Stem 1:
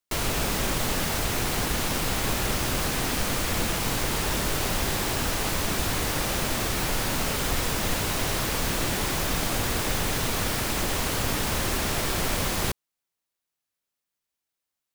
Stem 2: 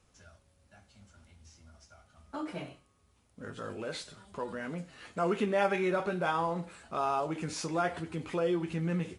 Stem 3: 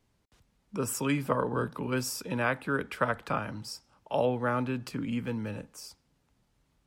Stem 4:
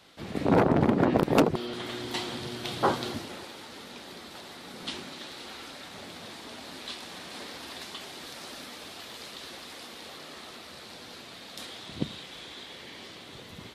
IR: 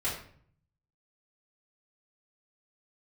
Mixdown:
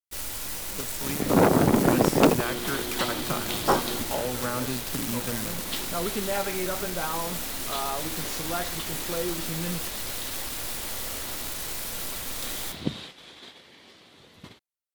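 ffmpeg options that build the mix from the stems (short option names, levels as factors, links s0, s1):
-filter_complex "[0:a]alimiter=limit=0.0631:level=0:latency=1:release=194,aeval=exprs='0.0188*(abs(mod(val(0)/0.0188+3,4)-2)-1)':c=same,aemphasis=mode=production:type=cd,volume=1.19,asplit=2[s0][s1];[s1]volume=0.251[s2];[1:a]adelay=750,volume=0.841[s3];[2:a]dynaudnorm=f=140:g=21:m=3.98,volume=0.596[s4];[3:a]bandreject=f=60:t=h:w=6,bandreject=f=120:t=h:w=6,adelay=850,volume=1.33[s5];[s0][s4]amix=inputs=2:normalize=0,acrusher=bits=5:dc=4:mix=0:aa=0.000001,acompressor=threshold=0.0447:ratio=6,volume=1[s6];[4:a]atrim=start_sample=2205[s7];[s2][s7]afir=irnorm=-1:irlink=0[s8];[s3][s5][s6][s8]amix=inputs=4:normalize=0,agate=range=0.316:threshold=0.01:ratio=16:detection=peak"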